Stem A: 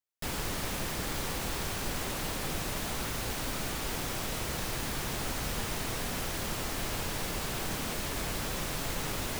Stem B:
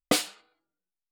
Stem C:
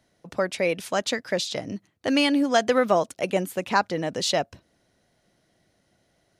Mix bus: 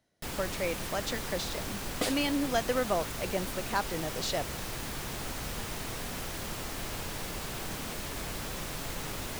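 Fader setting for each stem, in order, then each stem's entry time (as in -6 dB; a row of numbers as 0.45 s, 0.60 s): -3.0 dB, -8.5 dB, -9.0 dB; 0.00 s, 1.90 s, 0.00 s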